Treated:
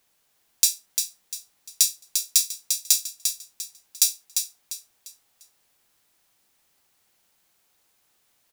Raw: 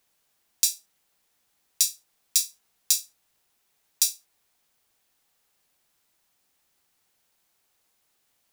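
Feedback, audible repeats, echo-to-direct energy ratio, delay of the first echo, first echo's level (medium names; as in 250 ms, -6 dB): 33%, 4, -5.5 dB, 348 ms, -6.0 dB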